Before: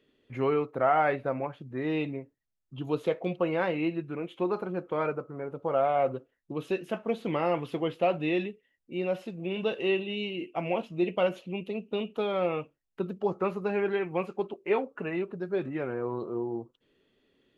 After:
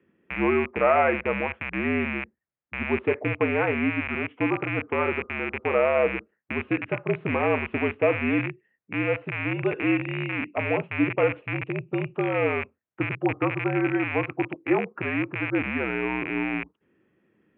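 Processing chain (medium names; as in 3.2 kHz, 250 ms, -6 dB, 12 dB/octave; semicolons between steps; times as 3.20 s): rattle on loud lows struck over -45 dBFS, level -19 dBFS; mistuned SSB -61 Hz 150–2400 Hz; trim +4 dB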